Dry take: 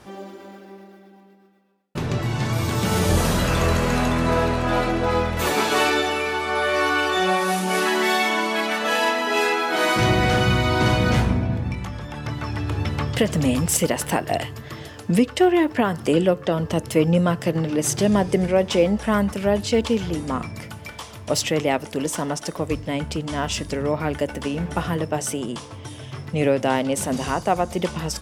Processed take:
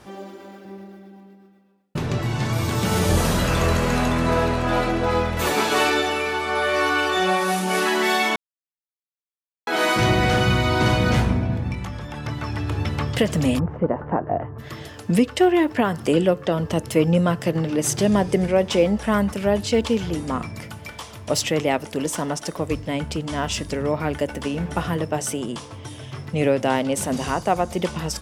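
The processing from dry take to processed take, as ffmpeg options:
-filter_complex "[0:a]asettb=1/sr,asplit=3[s0][s1][s2];[s0]atrim=end=0.654[s3];[s1]atrim=start=0.65:end=1.97,asetpts=PTS-STARTPTS,afade=t=in:d=0.004:c=qsin,afade=t=out:st=1.316:d=0.004:c=qsin,equalizer=f=100:w=0.44:g=9[s4];[s2]atrim=start=1.966[s5];[s3][s4]acrossfade=d=0.004:c1=hsin:c2=qsin[s6];[s6][s5]acrossfade=d=0.004:c1=qsin:c2=hsin,asplit=3[s7][s8][s9];[s7]afade=t=out:st=13.58:d=0.02[s10];[s8]lowpass=f=1300:w=0.5412,lowpass=f=1300:w=1.3066,afade=t=in:st=13.58:d=0.02,afade=t=out:st=14.58:d=0.02[s11];[s9]afade=t=in:st=14.58:d=0.02[s12];[s10][s11][s12]amix=inputs=3:normalize=0,asplit=3[s13][s14][s15];[s13]atrim=end=8.36,asetpts=PTS-STARTPTS,afade=t=out:st=8.356:d=0.004:c=hsin[s16];[s14]atrim=start=8.36:end=9.67,asetpts=PTS-STARTPTS,volume=0[s17];[s15]atrim=start=9.67,asetpts=PTS-STARTPTS,afade=t=in:d=0.004:c=hsin[s18];[s16][s17][s18]concat=n=3:v=0:a=1"

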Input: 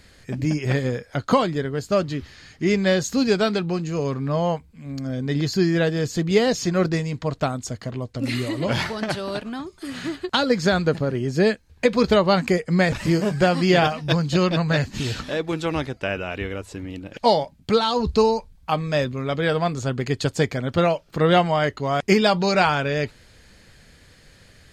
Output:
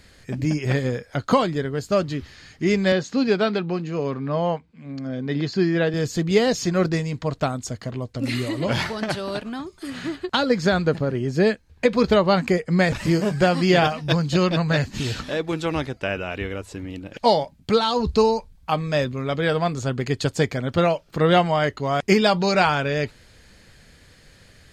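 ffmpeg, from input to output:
-filter_complex "[0:a]asettb=1/sr,asplit=3[s0][s1][s2];[s0]atrim=end=2.924[s3];[s1]atrim=start=2.92:end=5.94,asetpts=PTS-STARTPTS,afade=t=in:d=0.004:c=qsin,afade=t=out:st=3.016:d=0.004:c=qsin,highpass=150,lowpass=3900[s4];[s2]atrim=start=5.936[s5];[s3][s4]acrossfade=d=0.004:c1=hsin:c2=qsin[s6];[s6][s5]acrossfade=d=0.004:c1=qsin:c2=hsin,asettb=1/sr,asplit=3[s7][s8][s9];[s7]atrim=end=9.904[s10];[s8]atrim=start=9.9:end=12.79,asetpts=PTS-STARTPTS,afade=t=in:d=0.004:c=qsin,afade=t=out:st=2.886:d=0.004:c=qsin,highshelf=f=4600:g=-4.5[s11];[s9]atrim=start=12.786[s12];[s10][s11]acrossfade=d=0.004:c1=hsin:c2=qsin[s13];[s13][s12]acrossfade=d=0.004:c1=qsin:c2=hsin"

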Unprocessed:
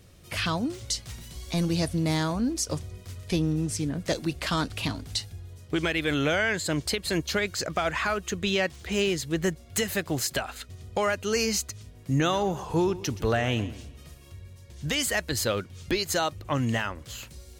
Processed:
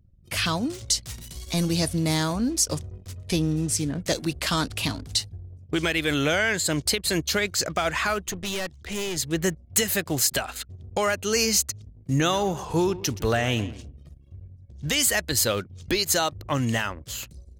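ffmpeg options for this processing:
-filter_complex "[0:a]asettb=1/sr,asplit=3[s0][s1][s2];[s0]atrim=end=8.244[s3];[s1]atrim=start=8.24:end=9.17,asetpts=PTS-STARTPTS,afade=t=in:d=0.004:c=qsin,afade=t=out:st=0.926:d=0.004:c=qsin,aeval=exprs='(tanh(28.2*val(0)+0.5)-tanh(0.5))/28.2':c=same[s4];[s2]atrim=start=9.166[s5];[s3][s4]acrossfade=d=0.004:c1=hsin:c2=qsin[s6];[s6][s5]acrossfade=d=0.004:c1=qsin:c2=hsin,anlmdn=0.0398,highshelf=f=5000:g=9,acontrast=40,volume=0.631"

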